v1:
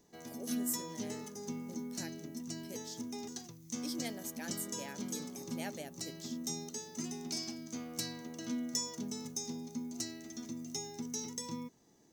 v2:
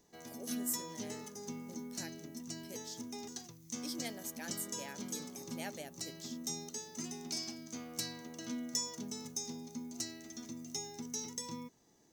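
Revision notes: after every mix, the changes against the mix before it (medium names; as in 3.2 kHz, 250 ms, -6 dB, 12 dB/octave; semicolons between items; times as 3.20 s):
master: add peaking EQ 220 Hz -3.5 dB 2.3 oct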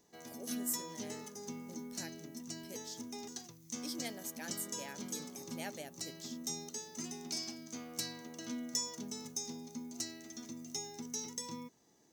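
background: add bass shelf 69 Hz -11 dB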